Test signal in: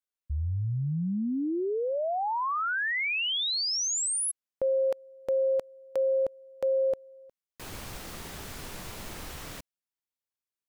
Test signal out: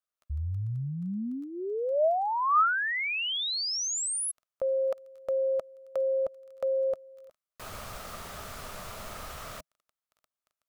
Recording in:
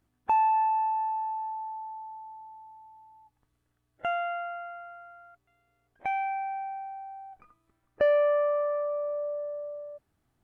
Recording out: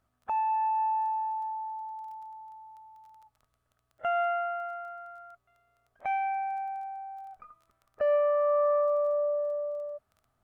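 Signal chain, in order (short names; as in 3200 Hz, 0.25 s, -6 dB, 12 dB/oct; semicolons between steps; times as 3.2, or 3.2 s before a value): crackle 13/s -46 dBFS; limiter -24.5 dBFS; thirty-one-band EQ 160 Hz -3 dB, 315 Hz -10 dB, 630 Hz +9 dB, 1250 Hz +11 dB; gain -2 dB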